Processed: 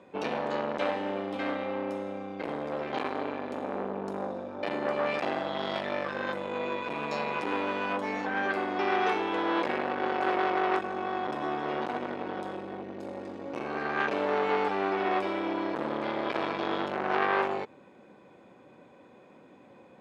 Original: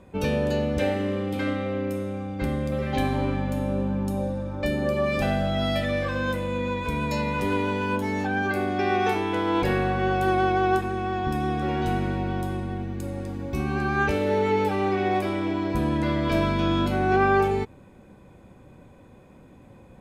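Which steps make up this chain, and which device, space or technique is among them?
public-address speaker with an overloaded transformer (transformer saturation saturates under 1.3 kHz; band-pass 290–5100 Hz)

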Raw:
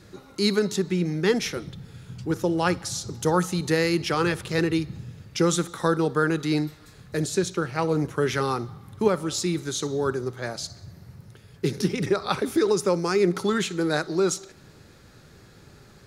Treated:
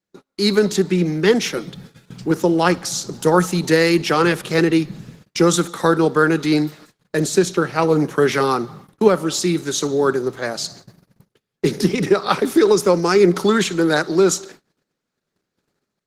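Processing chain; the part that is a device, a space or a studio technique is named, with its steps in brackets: video call (high-pass 160 Hz 24 dB/octave; level rider gain up to 7 dB; gate -41 dBFS, range -34 dB; trim +2 dB; Opus 16 kbps 48 kHz)

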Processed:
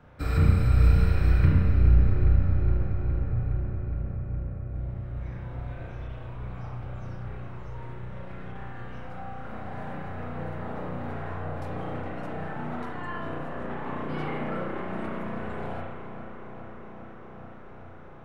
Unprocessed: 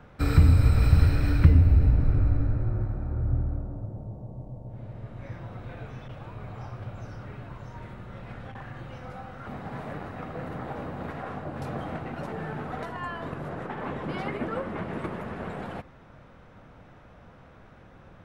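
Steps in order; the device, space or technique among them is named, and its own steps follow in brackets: dub delay into a spring reverb (filtered feedback delay 415 ms, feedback 82%, low-pass 4.7 kHz, level -11 dB; spring tank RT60 1.1 s, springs 33 ms, chirp 75 ms, DRR -3 dB); trim -5.5 dB

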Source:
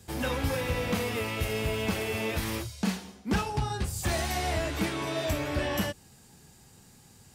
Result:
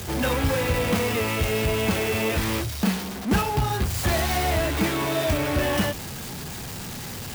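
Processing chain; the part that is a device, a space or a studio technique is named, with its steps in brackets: early CD player with a faulty converter (jump at every zero crossing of -33.5 dBFS; sampling jitter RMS 0.029 ms); trim +4.5 dB

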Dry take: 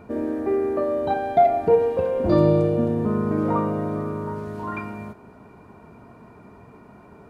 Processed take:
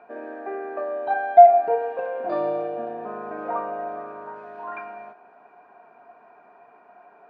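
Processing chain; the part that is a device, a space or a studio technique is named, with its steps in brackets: tin-can telephone (band-pass 600–2400 Hz; small resonant body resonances 720/1600/2500 Hz, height 15 dB, ringing for 60 ms); trim -3 dB

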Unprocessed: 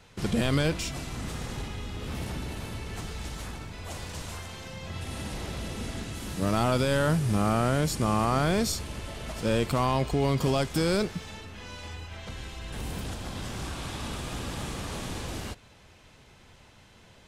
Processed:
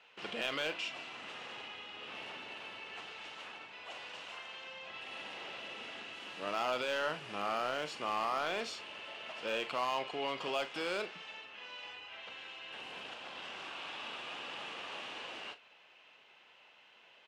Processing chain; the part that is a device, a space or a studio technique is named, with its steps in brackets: megaphone (band-pass 590–3300 Hz; peaking EQ 2.8 kHz +10.5 dB 0.37 oct; hard clipper -21 dBFS, distortion -17 dB; doubling 40 ms -12 dB); trim -5 dB

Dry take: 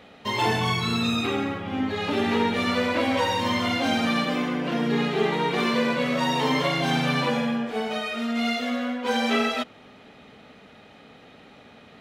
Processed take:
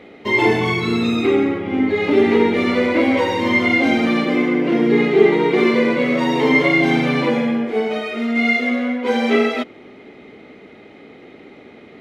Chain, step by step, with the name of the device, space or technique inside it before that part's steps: inside a helmet (treble shelf 4.8 kHz -6.5 dB; small resonant body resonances 350/2100 Hz, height 15 dB, ringing for 25 ms); trim +1.5 dB

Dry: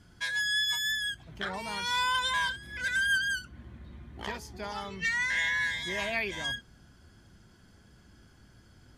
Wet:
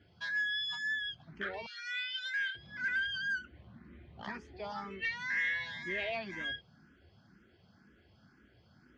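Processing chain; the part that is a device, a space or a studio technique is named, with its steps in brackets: 1.66–2.55 s: steep high-pass 1.5 kHz 72 dB/octave; barber-pole phaser into a guitar amplifier (barber-pole phaser +2 Hz; saturation -25.5 dBFS, distortion -21 dB; cabinet simulation 100–4300 Hz, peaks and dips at 120 Hz -4 dB, 970 Hz -5 dB, 3.6 kHz -5 dB)

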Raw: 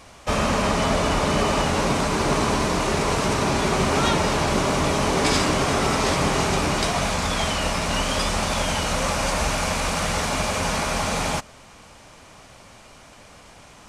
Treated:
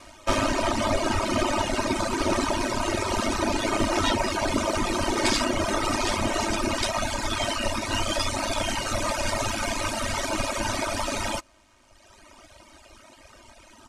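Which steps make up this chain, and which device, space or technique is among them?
ring-modulated robot voice (ring modulator 52 Hz; comb 3.2 ms, depth 93%); reverb removal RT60 1.6 s

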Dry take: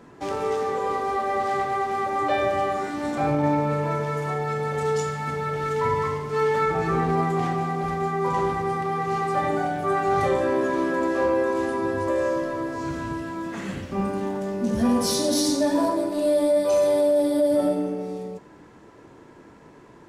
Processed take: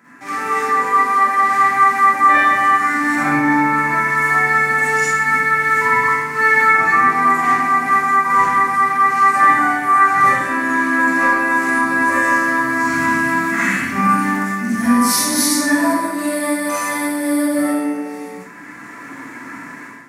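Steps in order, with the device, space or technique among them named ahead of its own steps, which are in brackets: far laptop microphone (reverberation RT60 0.45 s, pre-delay 41 ms, DRR -7 dB; high-pass 190 Hz 12 dB/octave; level rider gain up to 12 dB); FFT filter 170 Hz 0 dB, 250 Hz +3 dB, 440 Hz -12 dB, 2 kHz +13 dB, 3.2 kHz -4 dB, 12 kHz +10 dB; trim -4.5 dB

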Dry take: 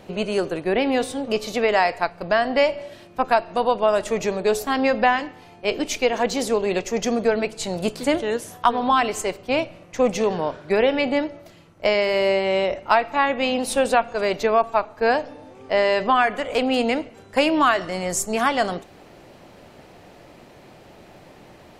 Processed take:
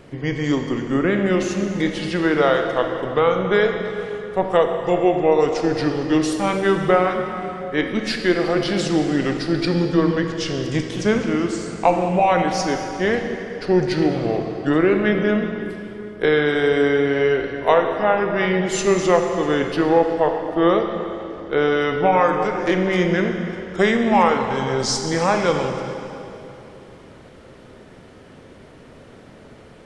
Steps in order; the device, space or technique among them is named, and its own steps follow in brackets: slowed and reverbed (tape speed -27%; reverberation RT60 3.1 s, pre-delay 27 ms, DRR 4 dB); trim +1 dB

